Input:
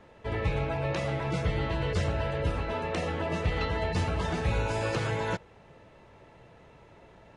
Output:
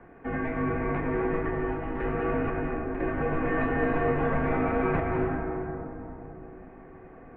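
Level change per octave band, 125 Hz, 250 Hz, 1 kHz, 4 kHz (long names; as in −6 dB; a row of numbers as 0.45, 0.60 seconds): −3.0 dB, +7.0 dB, +3.5 dB, below −15 dB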